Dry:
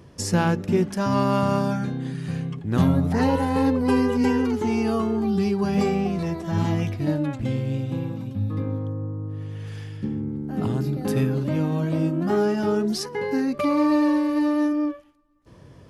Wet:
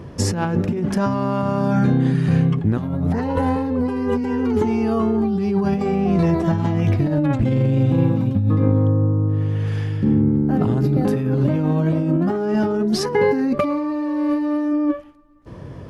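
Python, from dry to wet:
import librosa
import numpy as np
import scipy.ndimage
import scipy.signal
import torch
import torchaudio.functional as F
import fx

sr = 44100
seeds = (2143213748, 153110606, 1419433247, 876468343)

y = fx.high_shelf(x, sr, hz=2900.0, db=-11.5)
y = fx.over_compress(y, sr, threshold_db=-27.0, ratio=-1.0)
y = y * 10.0 ** (8.5 / 20.0)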